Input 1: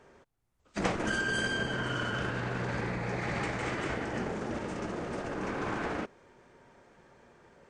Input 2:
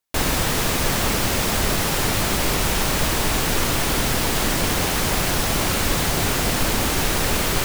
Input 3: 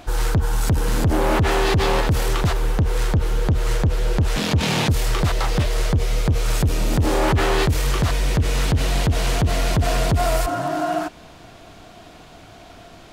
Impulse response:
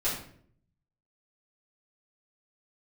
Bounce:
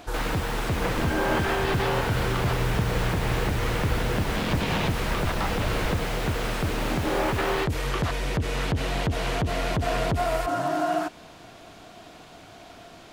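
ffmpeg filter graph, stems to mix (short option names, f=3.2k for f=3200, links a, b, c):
-filter_complex "[0:a]asubboost=boost=11.5:cutoff=110,volume=-2dB[a];[1:a]volume=-6dB[b];[2:a]volume=-2dB[c];[b][c]amix=inputs=2:normalize=0,lowshelf=f=98:g=-9.5,alimiter=limit=-15.5dB:level=0:latency=1:release=178,volume=0dB[d];[a][d]amix=inputs=2:normalize=0,acrossover=split=3500[e][f];[f]acompressor=threshold=-42dB:ratio=4:attack=1:release=60[g];[e][g]amix=inputs=2:normalize=0"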